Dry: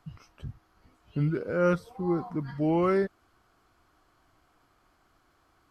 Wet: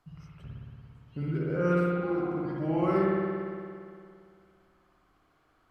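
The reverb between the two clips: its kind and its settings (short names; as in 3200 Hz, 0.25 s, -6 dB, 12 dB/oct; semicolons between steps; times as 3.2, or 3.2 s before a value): spring tank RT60 2.3 s, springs 57 ms, chirp 70 ms, DRR -5 dB; gain -7 dB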